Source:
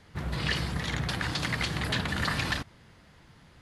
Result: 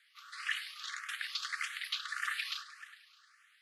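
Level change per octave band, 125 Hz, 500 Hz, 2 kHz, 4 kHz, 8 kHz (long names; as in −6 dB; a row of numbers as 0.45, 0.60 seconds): below −40 dB, below −40 dB, −5.5 dB, −5.5 dB, −5.5 dB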